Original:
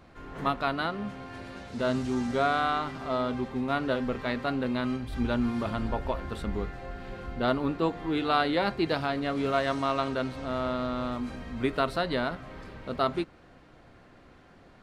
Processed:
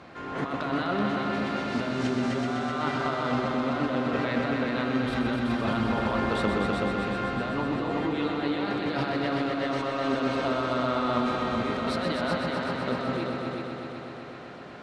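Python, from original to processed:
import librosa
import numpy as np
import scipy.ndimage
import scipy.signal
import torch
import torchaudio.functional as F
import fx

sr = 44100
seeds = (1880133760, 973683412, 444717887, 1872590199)

p1 = scipy.signal.sosfilt(scipy.signal.butter(2, 110.0, 'highpass', fs=sr, output='sos'), x)
p2 = fx.low_shelf(p1, sr, hz=350.0, db=-5.0)
p3 = fx.over_compress(p2, sr, threshold_db=-36.0, ratio=-1.0)
p4 = fx.air_absorb(p3, sr, metres=64.0)
p5 = p4 + fx.echo_heads(p4, sr, ms=126, heads='all three', feedback_pct=67, wet_db=-7.5, dry=0)
y = p5 * librosa.db_to_amplitude(5.5)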